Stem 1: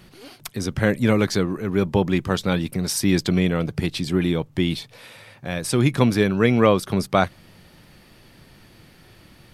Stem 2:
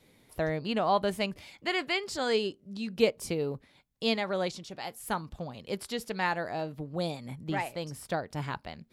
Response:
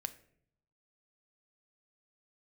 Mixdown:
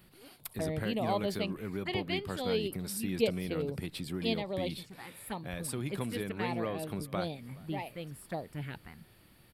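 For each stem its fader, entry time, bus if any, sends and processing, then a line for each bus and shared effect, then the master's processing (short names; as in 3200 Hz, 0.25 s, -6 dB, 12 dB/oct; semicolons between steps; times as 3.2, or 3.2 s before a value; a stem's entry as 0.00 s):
-12.0 dB, 0.00 s, no send, echo send -23.5 dB, high shelf 7600 Hz +11.5 dB; compressor 3:1, threshold -22 dBFS, peak gain reduction 9 dB
-3.0 dB, 0.20 s, no send, no echo send, envelope phaser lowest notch 310 Hz, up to 1500 Hz, full sweep at -28 dBFS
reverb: off
echo: feedback echo 0.421 s, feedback 51%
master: bell 6100 Hz -11 dB 0.5 oct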